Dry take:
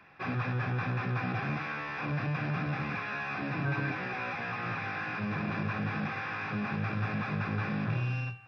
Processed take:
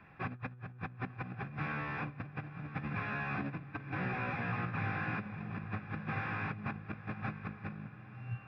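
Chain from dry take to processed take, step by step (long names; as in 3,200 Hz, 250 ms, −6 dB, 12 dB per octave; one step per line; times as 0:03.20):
bass and treble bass +9 dB, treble −13 dB
compressor whose output falls as the input rises −32 dBFS, ratio −0.5
on a send: feedback delay with all-pass diffusion 996 ms, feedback 43%, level −14 dB
on the sum: level −7.5 dB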